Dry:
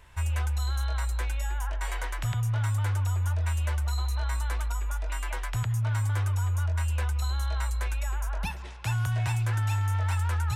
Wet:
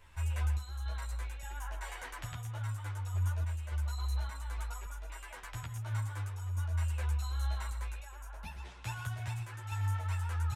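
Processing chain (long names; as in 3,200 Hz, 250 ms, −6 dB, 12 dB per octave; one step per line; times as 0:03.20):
in parallel at 0 dB: brickwall limiter −29.5 dBFS, peak gain reduction 7.5 dB
on the sum: sample-and-hold tremolo
on a send: single-tap delay 120 ms −10.5 dB
on the sum: string-ensemble chorus
level −7 dB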